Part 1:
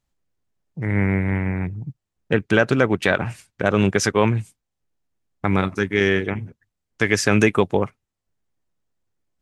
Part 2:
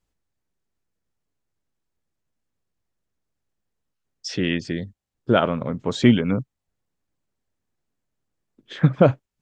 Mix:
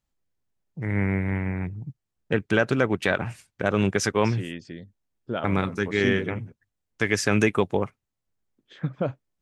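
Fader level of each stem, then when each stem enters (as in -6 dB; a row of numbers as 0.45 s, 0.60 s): -4.5 dB, -12.0 dB; 0.00 s, 0.00 s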